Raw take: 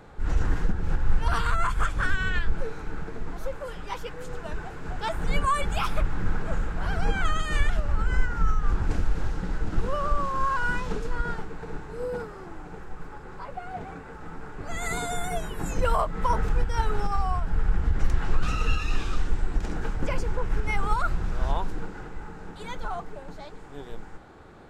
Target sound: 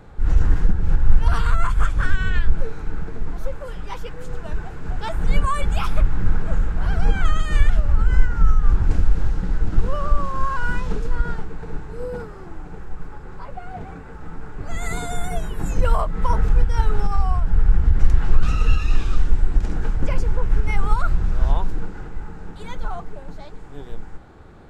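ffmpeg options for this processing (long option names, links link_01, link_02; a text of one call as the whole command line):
ffmpeg -i in.wav -af "lowshelf=frequency=170:gain=9" out.wav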